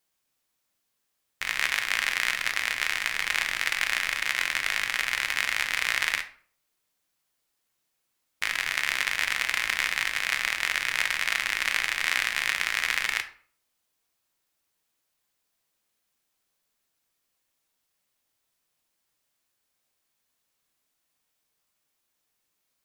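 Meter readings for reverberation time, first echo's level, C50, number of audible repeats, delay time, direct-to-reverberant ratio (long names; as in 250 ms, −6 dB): 0.50 s, no echo audible, 13.5 dB, no echo audible, no echo audible, 6.5 dB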